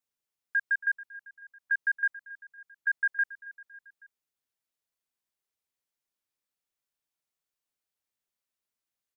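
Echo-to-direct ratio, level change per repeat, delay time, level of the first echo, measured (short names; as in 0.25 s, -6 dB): -16.0 dB, -5.0 dB, 0.276 s, -17.5 dB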